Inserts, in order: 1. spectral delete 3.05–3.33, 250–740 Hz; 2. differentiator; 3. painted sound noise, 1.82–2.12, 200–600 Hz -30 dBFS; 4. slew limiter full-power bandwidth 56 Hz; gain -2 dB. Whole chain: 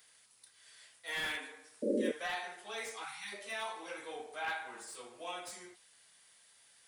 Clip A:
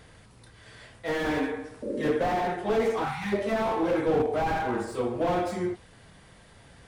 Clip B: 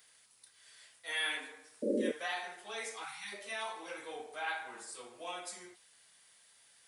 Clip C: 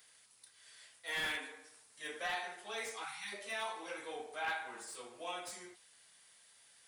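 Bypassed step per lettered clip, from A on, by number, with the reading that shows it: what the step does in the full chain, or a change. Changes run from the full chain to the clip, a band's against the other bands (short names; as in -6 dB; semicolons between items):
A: 2, 125 Hz band +14.5 dB; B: 4, distortion -12 dB; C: 3, 250 Hz band -13.5 dB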